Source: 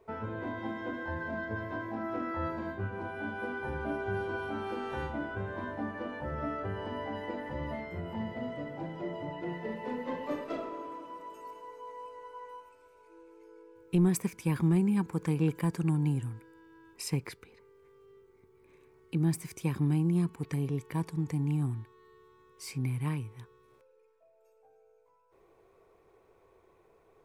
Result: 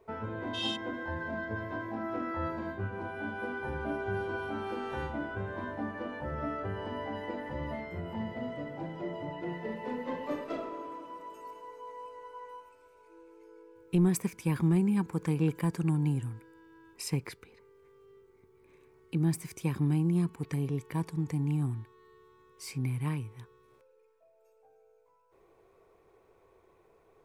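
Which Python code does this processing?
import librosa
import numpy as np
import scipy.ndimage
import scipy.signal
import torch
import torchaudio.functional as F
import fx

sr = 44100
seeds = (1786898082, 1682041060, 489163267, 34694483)

y = fx.spec_box(x, sr, start_s=0.54, length_s=0.22, low_hz=2500.0, high_hz=11000.0, gain_db=26)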